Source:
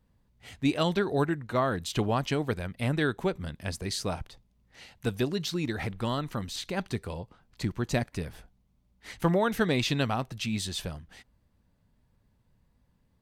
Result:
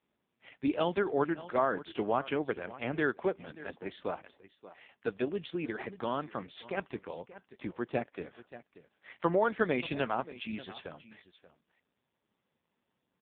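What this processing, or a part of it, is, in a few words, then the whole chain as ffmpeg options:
satellite phone: -af "highpass=300,lowpass=3.2k,aecho=1:1:582:0.15" -ar 8000 -c:a libopencore_amrnb -b:a 5150

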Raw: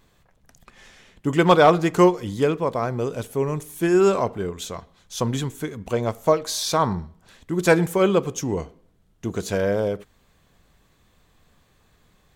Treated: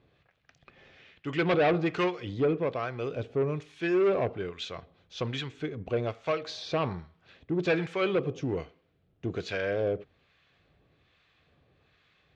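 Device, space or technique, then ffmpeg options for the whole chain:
guitar amplifier with harmonic tremolo: -filter_complex "[0:a]acrossover=split=930[a][b];[a]aeval=exprs='val(0)*(1-0.7/2+0.7/2*cos(2*PI*1.2*n/s))':c=same[c];[b]aeval=exprs='val(0)*(1-0.7/2-0.7/2*cos(2*PI*1.2*n/s))':c=same[d];[c][d]amix=inputs=2:normalize=0,asoftclip=type=tanh:threshold=-19.5dB,highpass=80,equalizer=f=210:t=q:w=4:g=-9,equalizer=f=960:t=q:w=4:g=-8,equalizer=f=2.5k:t=q:w=4:g=5,lowpass=f=4.3k:w=0.5412,lowpass=f=4.3k:w=1.3066"

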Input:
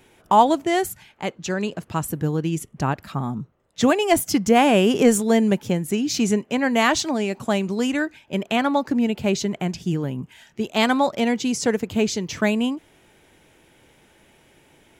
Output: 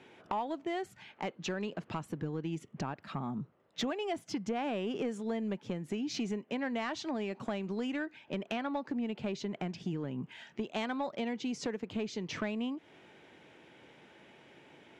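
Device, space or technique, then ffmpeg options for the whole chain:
AM radio: -af "highpass=150,lowpass=3.9k,acompressor=threshold=-32dB:ratio=5,asoftclip=type=tanh:threshold=-23.5dB,volume=-1dB"

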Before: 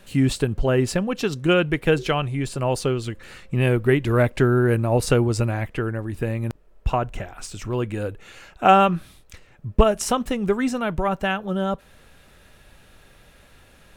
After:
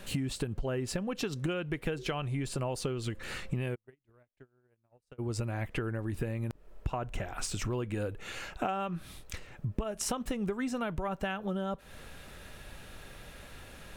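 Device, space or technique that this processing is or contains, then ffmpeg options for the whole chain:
serial compression, leveller first: -filter_complex "[0:a]acompressor=threshold=-23dB:ratio=2,acompressor=threshold=-34dB:ratio=6,asplit=3[a][b][c];[a]afade=t=out:st=3.74:d=0.02[d];[b]agate=range=-46dB:threshold=-30dB:ratio=16:detection=peak,afade=t=in:st=3.74:d=0.02,afade=t=out:st=5.18:d=0.02[e];[c]afade=t=in:st=5.18:d=0.02[f];[d][e][f]amix=inputs=3:normalize=0,volume=3dB"

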